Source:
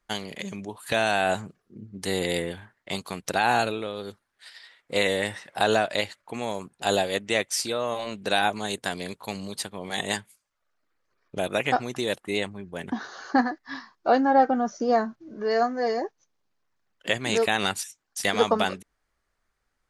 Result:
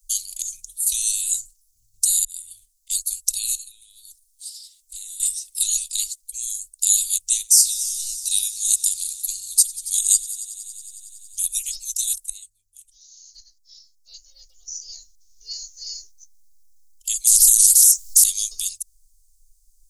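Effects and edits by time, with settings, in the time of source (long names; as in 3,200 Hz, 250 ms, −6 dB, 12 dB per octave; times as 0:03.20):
0:02.25–0:02.93: fade in
0:03.55–0:05.20: downward compressor 3 to 1, threshold −41 dBFS
0:07.34–0:11.55: echo machine with several playback heads 92 ms, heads all three, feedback 73%, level −23 dB
0:12.30–0:15.83: fade in quadratic, from −15 dB
0:17.27–0:18.24: every bin compressed towards the loudest bin 10 to 1
whole clip: inverse Chebyshev band-stop filter 130–1,700 Hz, stop band 70 dB; boost into a limiter +25.5 dB; level −1 dB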